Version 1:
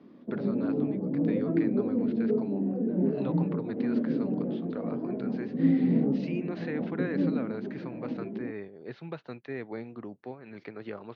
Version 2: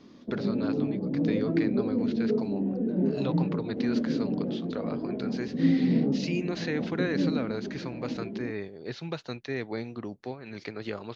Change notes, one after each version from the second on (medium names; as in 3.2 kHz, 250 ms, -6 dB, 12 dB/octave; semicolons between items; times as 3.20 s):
speech +3.5 dB; master: remove band-pass 120–2200 Hz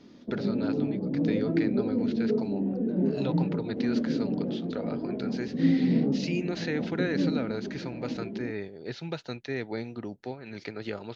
speech: add Butterworth band-stop 1.1 kHz, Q 6.9